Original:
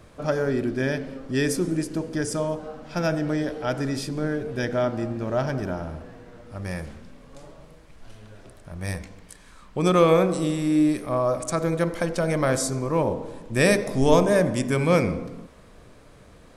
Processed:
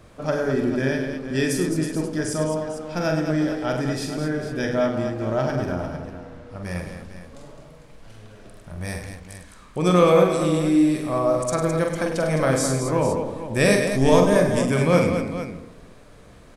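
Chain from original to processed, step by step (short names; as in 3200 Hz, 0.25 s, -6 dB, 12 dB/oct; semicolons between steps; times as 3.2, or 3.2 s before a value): 5.92–6.63 high shelf 10000 Hz -10.5 dB; on a send: tapped delay 45/101/211/451 ms -5.5/-9/-8/-11.5 dB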